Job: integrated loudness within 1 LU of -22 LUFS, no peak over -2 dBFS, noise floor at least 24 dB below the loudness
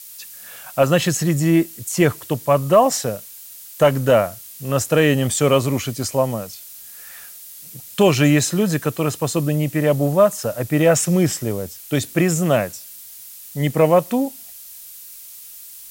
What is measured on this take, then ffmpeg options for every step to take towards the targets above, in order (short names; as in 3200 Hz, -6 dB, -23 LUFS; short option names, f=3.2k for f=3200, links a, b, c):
noise floor -39 dBFS; noise floor target -43 dBFS; loudness -18.5 LUFS; peak -2.5 dBFS; loudness target -22.0 LUFS
-> -af "afftdn=nr=6:nf=-39"
-af "volume=-3.5dB"